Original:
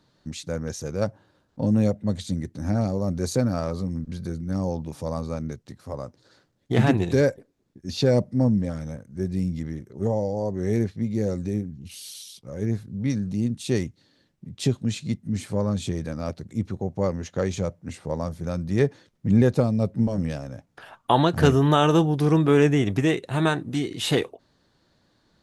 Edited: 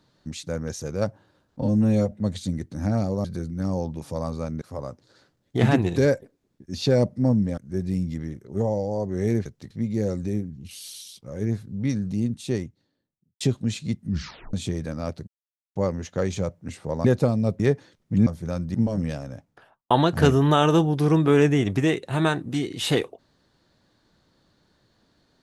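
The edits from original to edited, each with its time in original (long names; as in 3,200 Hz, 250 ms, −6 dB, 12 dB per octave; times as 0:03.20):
0:01.62–0:01.95: time-stretch 1.5×
0:03.08–0:04.15: remove
0:05.52–0:05.77: move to 0:10.91
0:08.73–0:09.03: remove
0:13.33–0:14.61: fade out and dull
0:15.28: tape stop 0.46 s
0:16.48–0:16.96: silence
0:18.25–0:18.73: swap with 0:19.40–0:19.95
0:20.53–0:21.11: fade out and dull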